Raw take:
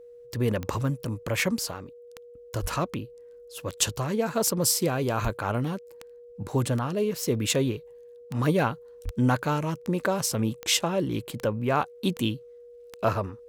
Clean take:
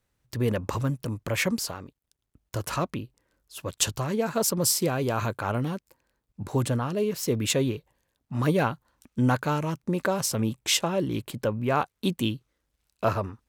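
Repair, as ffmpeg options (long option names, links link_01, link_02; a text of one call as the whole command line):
ffmpeg -i in.wav -filter_complex "[0:a]adeclick=threshold=4,bandreject=frequency=480:width=30,asplit=3[link_01][link_02][link_03];[link_01]afade=type=out:start_time=2.61:duration=0.02[link_04];[link_02]highpass=frequency=140:width=0.5412,highpass=frequency=140:width=1.3066,afade=type=in:start_time=2.61:duration=0.02,afade=type=out:start_time=2.73:duration=0.02[link_05];[link_03]afade=type=in:start_time=2.73:duration=0.02[link_06];[link_04][link_05][link_06]amix=inputs=3:normalize=0,asplit=3[link_07][link_08][link_09];[link_07]afade=type=out:start_time=5.23:duration=0.02[link_10];[link_08]highpass=frequency=140:width=0.5412,highpass=frequency=140:width=1.3066,afade=type=in:start_time=5.23:duration=0.02,afade=type=out:start_time=5.35:duration=0.02[link_11];[link_09]afade=type=in:start_time=5.35:duration=0.02[link_12];[link_10][link_11][link_12]amix=inputs=3:normalize=0,asplit=3[link_13][link_14][link_15];[link_13]afade=type=out:start_time=9.04:duration=0.02[link_16];[link_14]highpass=frequency=140:width=0.5412,highpass=frequency=140:width=1.3066,afade=type=in:start_time=9.04:duration=0.02,afade=type=out:start_time=9.16:duration=0.02[link_17];[link_15]afade=type=in:start_time=9.16:duration=0.02[link_18];[link_16][link_17][link_18]amix=inputs=3:normalize=0" out.wav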